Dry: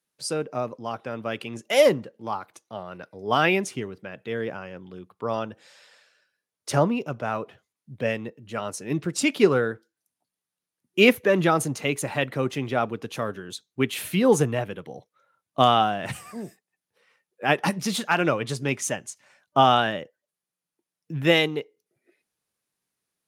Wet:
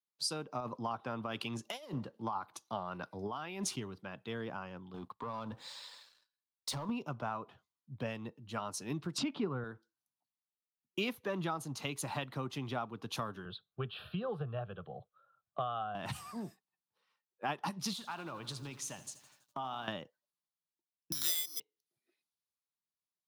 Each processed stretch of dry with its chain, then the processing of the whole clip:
0.6–3.76 HPF 49 Hz + negative-ratio compressor -31 dBFS
4.94–6.89 ripple EQ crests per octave 1, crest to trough 6 dB + compressor, threshold -37 dBFS + sample leveller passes 2
9.18–9.64 LPF 2200 Hz + low shelf 220 Hz +10 dB + upward compressor, threshold -21 dBFS
13.45–15.95 air absorption 420 m + fixed phaser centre 1400 Hz, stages 8 + three-band squash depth 40%
17.93–19.88 compressor 4:1, threshold -36 dBFS + lo-fi delay 83 ms, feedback 80%, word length 9-bit, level -15 dB
21.12–21.6 upward compressor, threshold -20 dBFS + speaker cabinet 480–2600 Hz, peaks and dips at 790 Hz -4 dB, 1400 Hz +8 dB, 2100 Hz +8 dB + careless resampling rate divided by 8×, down filtered, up zero stuff
whole clip: ten-band EQ 500 Hz -8 dB, 1000 Hz +8 dB, 2000 Hz -8 dB, 4000 Hz +6 dB, 8000 Hz -4 dB; compressor 6:1, threshold -32 dBFS; three-band expander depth 40%; gain -3 dB

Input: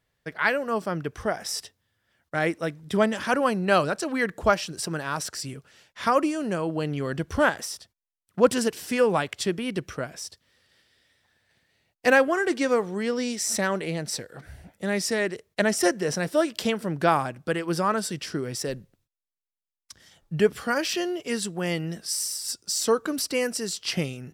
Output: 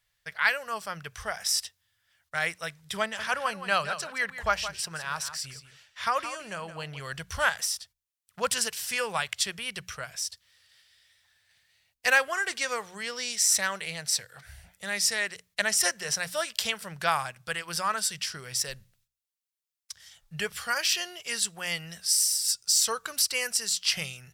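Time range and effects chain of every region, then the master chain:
3.02–7 bell 11000 Hz -7 dB 2.4 oct + echo 0.169 s -11.5 dB
whole clip: passive tone stack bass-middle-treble 10-0-10; notches 60/120/180 Hz; gain +5.5 dB

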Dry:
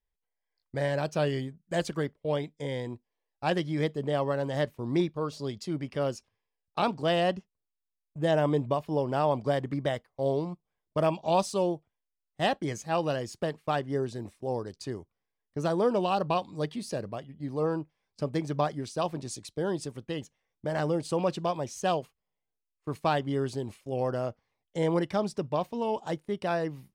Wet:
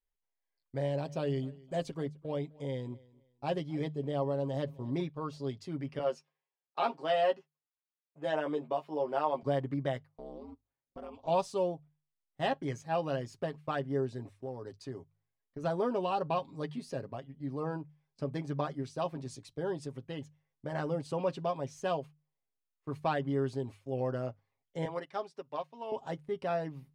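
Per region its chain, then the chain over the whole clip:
0.77–4.97 bell 1600 Hz -8.5 dB 0.93 oct + feedback echo 0.258 s, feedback 25%, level -23 dB
5.99–9.43 HPF 410 Hz + high shelf 6700 Hz -6 dB + doubler 13 ms -3 dB
10.07–11.27 compressor 3:1, threshold -38 dBFS + ring modulator 100 Hz
14.33–15.64 compressor, threshold -32 dBFS + notches 50/100/150 Hz
24.85–25.92 weighting filter A + upward expander, over -46 dBFS
whole clip: high shelf 4500 Hz -9.5 dB; notches 50/100/150 Hz; comb 7.4 ms, depth 58%; gain -5.5 dB

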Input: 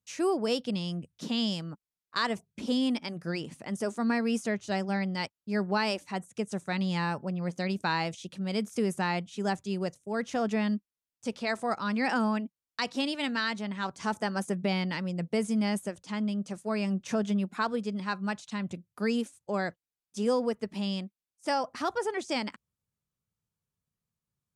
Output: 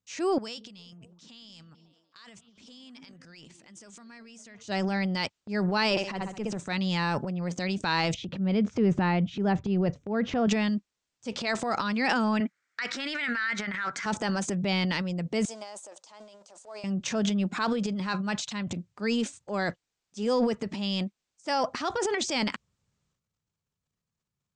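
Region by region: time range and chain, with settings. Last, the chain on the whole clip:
0.38–4.64 passive tone stack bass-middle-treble 5-5-5 + compressor, threshold -47 dBFS + delay with a stepping band-pass 0.184 s, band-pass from 260 Hz, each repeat 0.7 oct, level -10.5 dB
5.9–6.57 high shelf 5400 Hz -10.5 dB + flutter echo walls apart 11.6 m, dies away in 0.47 s + AM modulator 210 Hz, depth 30%
8.14–10.47 LPF 3400 Hz + tilt -2.5 dB/oct
12.4–14.06 HPF 250 Hz 6 dB/oct + band shelf 1700 Hz +15.5 dB 1 oct + compressor 3:1, threshold -34 dBFS
15.45–16.84 G.711 law mismatch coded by mu + ladder high-pass 550 Hz, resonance 30% + bell 1900 Hz -13 dB 2.1 oct
whole clip: steep low-pass 8100 Hz 48 dB/oct; dynamic EQ 3500 Hz, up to +5 dB, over -46 dBFS, Q 0.74; transient shaper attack -4 dB, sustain +11 dB; gain +1 dB

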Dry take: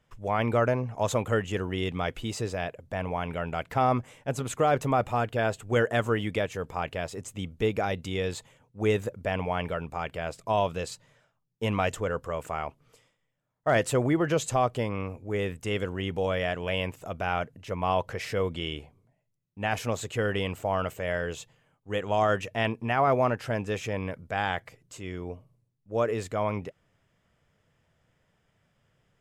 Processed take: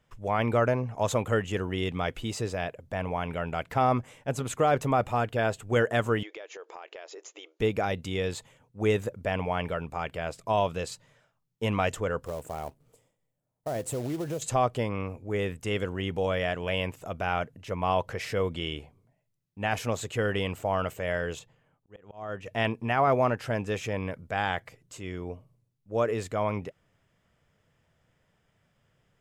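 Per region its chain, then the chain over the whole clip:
6.23–7.6 brick-wall FIR band-pass 310–7300 Hz + compressor 5:1, threshold -40 dBFS
12.25–14.42 band shelf 2500 Hz -10.5 dB 2.7 oct + compressor 4:1, threshold -29 dBFS + short-mantissa float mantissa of 2-bit
21.39–22.46 high shelf 2700 Hz -10 dB + auto swell 0.621 s
whole clip: dry

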